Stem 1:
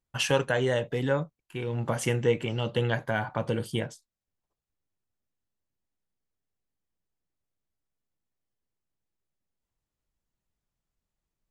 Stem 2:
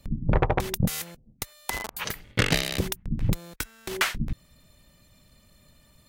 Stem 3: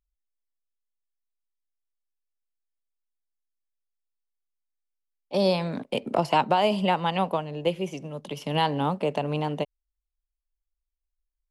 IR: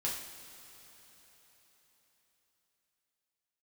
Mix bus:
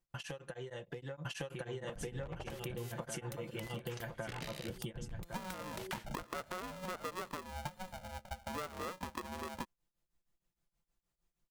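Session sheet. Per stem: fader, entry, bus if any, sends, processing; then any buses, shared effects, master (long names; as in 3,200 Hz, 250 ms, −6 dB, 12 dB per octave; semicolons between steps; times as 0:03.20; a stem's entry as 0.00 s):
−0.5 dB, 0.00 s, bus A, no send, echo send −3.5 dB, downward compressor 12 to 1, threshold −29 dBFS, peak gain reduction 11.5 dB; comb filter 5.8 ms, depth 65%; tremolo along a rectified sine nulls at 6.4 Hz
−7.0 dB, 1.90 s, bus A, no send, no echo send, no processing
−7.5 dB, 0.00 s, no bus, no send, no echo send, envelope filter 320–1,100 Hz, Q 4.4, up, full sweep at −19 dBFS; parametric band 180 Hz +14 dB 2 octaves; ring modulator with a square carrier 370 Hz
bus A: 0.0 dB, wave folding −21.5 dBFS; downward compressor 3 to 1, threshold −44 dBFS, peak gain reduction 14 dB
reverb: not used
echo: repeating echo 1,106 ms, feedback 23%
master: downward compressor 6 to 1, threshold −38 dBFS, peak gain reduction 10.5 dB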